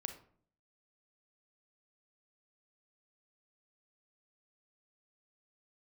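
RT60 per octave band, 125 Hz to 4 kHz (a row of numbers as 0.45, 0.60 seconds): 0.75, 0.70, 0.60, 0.50, 0.40, 0.30 seconds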